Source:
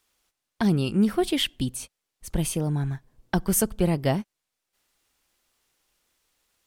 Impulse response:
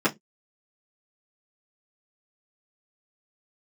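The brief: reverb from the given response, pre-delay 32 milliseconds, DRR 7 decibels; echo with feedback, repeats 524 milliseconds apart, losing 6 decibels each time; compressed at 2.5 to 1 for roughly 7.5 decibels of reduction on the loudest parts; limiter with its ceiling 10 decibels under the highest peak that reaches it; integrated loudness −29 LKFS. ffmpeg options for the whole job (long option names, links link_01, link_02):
-filter_complex "[0:a]acompressor=threshold=-29dB:ratio=2.5,alimiter=limit=-23dB:level=0:latency=1,aecho=1:1:524|1048|1572|2096|2620|3144:0.501|0.251|0.125|0.0626|0.0313|0.0157,asplit=2[link_01][link_02];[1:a]atrim=start_sample=2205,adelay=32[link_03];[link_02][link_03]afir=irnorm=-1:irlink=0,volume=-21.5dB[link_04];[link_01][link_04]amix=inputs=2:normalize=0,volume=3dB"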